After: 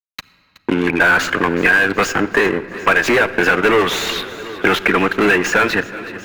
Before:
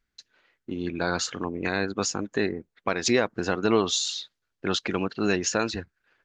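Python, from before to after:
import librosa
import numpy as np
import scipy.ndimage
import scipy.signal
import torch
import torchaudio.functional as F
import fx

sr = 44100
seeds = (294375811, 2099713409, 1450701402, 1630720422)

y = fx.highpass(x, sr, hz=520.0, slope=6)
y = fx.peak_eq(y, sr, hz=1600.0, db=6.0, octaves=0.22)
y = fx.fuzz(y, sr, gain_db=35.0, gate_db=-44.0)
y = fx.transient(y, sr, attack_db=2, sustain_db=-6)
y = fx.high_shelf_res(y, sr, hz=3300.0, db=-11.5, q=1.5)
y = fx.echo_feedback(y, sr, ms=371, feedback_pct=60, wet_db=-20.5)
y = fx.room_shoebox(y, sr, seeds[0], volume_m3=3800.0, walls='mixed', distance_m=0.4)
y = fx.band_squash(y, sr, depth_pct=40)
y = F.gain(torch.from_numpy(y), 2.0).numpy()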